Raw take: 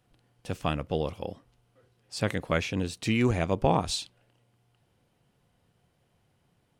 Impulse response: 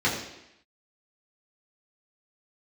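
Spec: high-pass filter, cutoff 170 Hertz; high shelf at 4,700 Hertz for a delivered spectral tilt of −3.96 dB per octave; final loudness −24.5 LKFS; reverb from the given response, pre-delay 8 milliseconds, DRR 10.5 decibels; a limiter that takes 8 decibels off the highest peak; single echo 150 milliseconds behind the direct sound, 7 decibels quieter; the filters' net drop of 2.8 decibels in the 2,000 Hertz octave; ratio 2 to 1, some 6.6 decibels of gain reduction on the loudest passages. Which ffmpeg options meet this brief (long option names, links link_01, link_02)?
-filter_complex "[0:a]highpass=170,equalizer=frequency=2000:width_type=o:gain=-4.5,highshelf=frequency=4700:gain=4.5,acompressor=threshold=-32dB:ratio=2,alimiter=limit=-23.5dB:level=0:latency=1,aecho=1:1:150:0.447,asplit=2[link_01][link_02];[1:a]atrim=start_sample=2205,adelay=8[link_03];[link_02][link_03]afir=irnorm=-1:irlink=0,volume=-24.5dB[link_04];[link_01][link_04]amix=inputs=2:normalize=0,volume=12dB"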